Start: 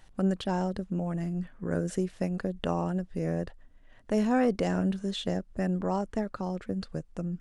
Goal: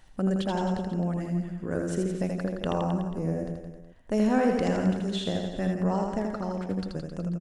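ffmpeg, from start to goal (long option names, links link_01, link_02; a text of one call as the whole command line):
ffmpeg -i in.wav -filter_complex "[0:a]asettb=1/sr,asplit=3[link_01][link_02][link_03];[link_01]atrim=end=2.864[link_04];[link_02]atrim=start=2.86:end=4.12,asetpts=PTS-STARTPTS,afade=type=in:duration=0.004:curve=qsin,afade=type=out:start_time=1.256:duration=0.004:curve=qsin,equalizer=frequency=2300:width=0.47:gain=-7.5[link_05];[link_03]atrim=start=4.116[link_06];[link_04][link_05]acrossfade=duration=0.004:curve1=hsin:curve2=qsin[link_07];[link_07][link_06]acrossfade=duration=0.004:curve1=qsin:curve2=hsin,asplit=2[link_08][link_09];[link_09]aecho=0:1:80|168|264.8|371.3|488.4:0.631|0.398|0.251|0.158|0.1[link_10];[link_08][link_10]amix=inputs=2:normalize=0" out.wav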